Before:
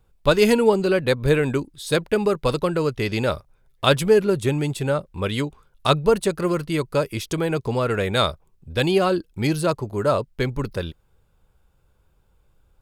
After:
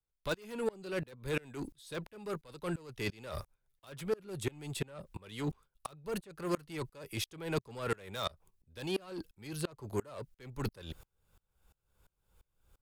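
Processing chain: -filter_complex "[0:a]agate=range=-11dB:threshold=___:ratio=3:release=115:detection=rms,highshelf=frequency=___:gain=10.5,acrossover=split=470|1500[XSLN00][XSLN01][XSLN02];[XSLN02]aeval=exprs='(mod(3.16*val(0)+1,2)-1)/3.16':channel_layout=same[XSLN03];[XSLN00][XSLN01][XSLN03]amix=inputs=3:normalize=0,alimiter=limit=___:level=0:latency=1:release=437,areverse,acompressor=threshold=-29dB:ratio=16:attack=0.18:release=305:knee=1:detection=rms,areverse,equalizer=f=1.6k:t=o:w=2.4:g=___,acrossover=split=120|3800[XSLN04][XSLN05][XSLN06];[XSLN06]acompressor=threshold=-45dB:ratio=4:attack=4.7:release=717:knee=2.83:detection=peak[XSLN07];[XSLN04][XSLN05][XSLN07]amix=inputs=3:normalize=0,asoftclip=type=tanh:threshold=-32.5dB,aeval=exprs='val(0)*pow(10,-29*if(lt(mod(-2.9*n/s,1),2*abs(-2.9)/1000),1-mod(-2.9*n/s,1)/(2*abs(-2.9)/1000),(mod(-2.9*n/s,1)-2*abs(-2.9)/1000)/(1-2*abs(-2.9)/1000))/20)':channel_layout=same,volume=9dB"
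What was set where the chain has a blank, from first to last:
-48dB, 4.1k, -11dB, 2.5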